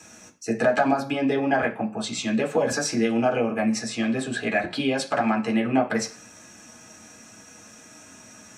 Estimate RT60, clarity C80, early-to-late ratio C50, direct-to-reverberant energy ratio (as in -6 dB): 0.40 s, 19.0 dB, 13.5 dB, 0.0 dB